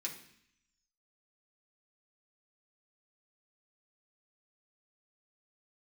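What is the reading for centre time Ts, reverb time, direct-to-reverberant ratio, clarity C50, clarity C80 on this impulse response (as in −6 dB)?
20 ms, 0.65 s, −2.5 dB, 9.0 dB, 12.0 dB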